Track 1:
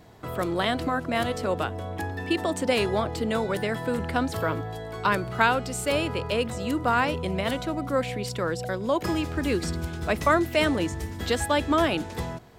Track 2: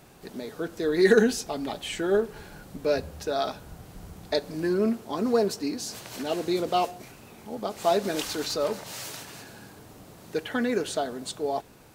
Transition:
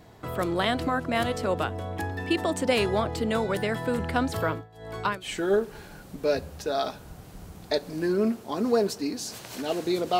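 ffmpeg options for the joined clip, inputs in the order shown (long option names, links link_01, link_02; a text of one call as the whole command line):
ffmpeg -i cue0.wav -i cue1.wav -filter_complex "[0:a]asettb=1/sr,asplit=3[link_01][link_02][link_03];[link_01]atrim=end=4.444[link_04];[link_02]atrim=start=4.44:end=5.29,asetpts=PTS-STARTPTS,afade=type=in:duration=0.004:curve=qsin,afade=type=out:start_time=0.846:duration=0.004:curve=qsin,tremolo=f=1.9:d=0.89[link_05];[link_03]atrim=start=5.286[link_06];[link_04][link_05]acrossfade=duration=0.004:curve1=hsin:curve2=qsin[link_07];[link_07][link_06]acrossfade=duration=0.004:curve1=qsin:curve2=hsin,apad=whole_dur=10.19,atrim=end=10.19,atrim=end=5.29,asetpts=PTS-STARTPTS[link_08];[1:a]atrim=start=1.8:end=6.8,asetpts=PTS-STARTPTS[link_09];[link_08][link_09]acrossfade=duration=0.1:curve1=tri:curve2=tri" out.wav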